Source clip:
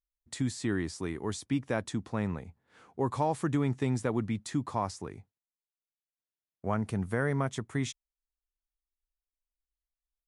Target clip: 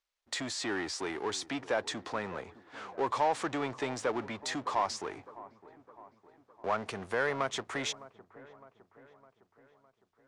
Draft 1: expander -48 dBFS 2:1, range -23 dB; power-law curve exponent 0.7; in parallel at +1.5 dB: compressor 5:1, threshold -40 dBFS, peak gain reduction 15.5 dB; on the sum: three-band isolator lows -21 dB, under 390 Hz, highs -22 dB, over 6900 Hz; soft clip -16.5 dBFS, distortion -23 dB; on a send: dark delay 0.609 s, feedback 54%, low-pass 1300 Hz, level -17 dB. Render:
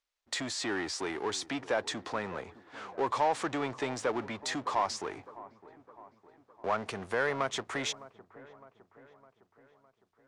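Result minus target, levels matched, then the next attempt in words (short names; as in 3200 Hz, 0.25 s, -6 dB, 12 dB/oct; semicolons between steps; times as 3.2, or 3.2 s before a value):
compressor: peak gain reduction -5 dB
expander -48 dBFS 2:1, range -23 dB; power-law curve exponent 0.7; in parallel at +1.5 dB: compressor 5:1, threshold -46 dBFS, peak gain reduction 20.5 dB; on the sum: three-band isolator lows -21 dB, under 390 Hz, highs -22 dB, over 6900 Hz; soft clip -16.5 dBFS, distortion -24 dB; on a send: dark delay 0.609 s, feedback 54%, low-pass 1300 Hz, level -17 dB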